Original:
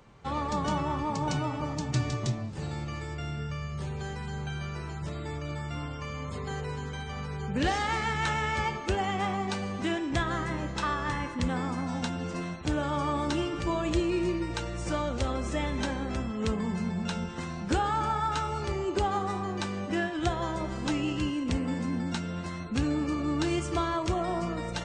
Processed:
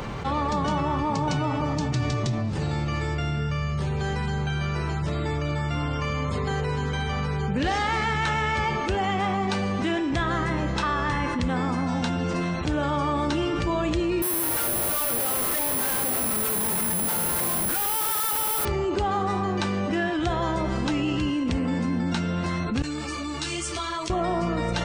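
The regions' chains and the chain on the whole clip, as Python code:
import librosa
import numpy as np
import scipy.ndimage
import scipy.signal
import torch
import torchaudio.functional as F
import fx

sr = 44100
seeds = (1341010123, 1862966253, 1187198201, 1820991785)

y = fx.chain(x, sr, fx.filter_lfo_bandpass(shape='saw_up', hz=2.2, low_hz=680.0, high_hz=1800.0, q=1.1),
    fx.schmitt(flips_db=-46.5),
    fx.resample_bad(factor=4, down='none', up='zero_stuff'), at=(14.22, 18.65))
y = fx.chain(y, sr, fx.pre_emphasis(coefficient=0.9),
    fx.ensemble(), at=(22.82, 24.1))
y = fx.peak_eq(y, sr, hz=7500.0, db=-5.0, octaves=0.71)
y = fx.env_flatten(y, sr, amount_pct=70)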